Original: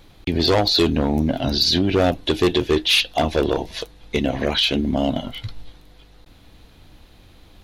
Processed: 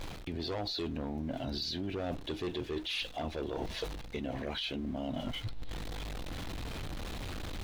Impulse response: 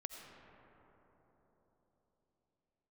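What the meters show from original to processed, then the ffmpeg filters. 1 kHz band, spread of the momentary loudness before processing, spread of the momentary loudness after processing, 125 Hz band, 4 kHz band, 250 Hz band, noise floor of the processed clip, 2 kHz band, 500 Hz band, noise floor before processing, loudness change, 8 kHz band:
−16.5 dB, 11 LU, 7 LU, −14.5 dB, −18.0 dB, −16.5 dB, −45 dBFS, −16.0 dB, −17.5 dB, −49 dBFS, −18.5 dB, −17.0 dB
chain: -af "aeval=exprs='val(0)+0.5*0.0251*sgn(val(0))':channel_layout=same,lowpass=frequency=3900:poles=1,alimiter=limit=-15dB:level=0:latency=1:release=79,areverse,acompressor=threshold=-32dB:ratio=6,areverse,volume=-2.5dB"

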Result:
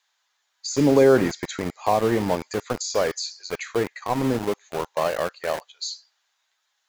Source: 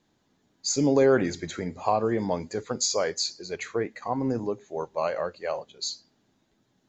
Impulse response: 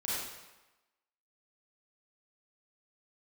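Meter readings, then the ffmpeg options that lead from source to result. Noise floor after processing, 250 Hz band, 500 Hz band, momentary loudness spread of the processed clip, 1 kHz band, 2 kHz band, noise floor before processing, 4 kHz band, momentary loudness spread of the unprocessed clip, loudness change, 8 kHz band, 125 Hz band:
−74 dBFS, +4.0 dB, +4.0 dB, 14 LU, +4.0 dB, +4.5 dB, −71 dBFS, +0.5 dB, 12 LU, +3.5 dB, can't be measured, +4.5 dB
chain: -filter_complex "[0:a]acrossover=split=940[link_01][link_02];[link_01]aeval=exprs='val(0)*gte(abs(val(0)),0.0282)':channel_layout=same[link_03];[link_02]alimiter=level_in=1dB:limit=-24dB:level=0:latency=1:release=84,volume=-1dB[link_04];[link_03][link_04]amix=inputs=2:normalize=0,volume=4.5dB"

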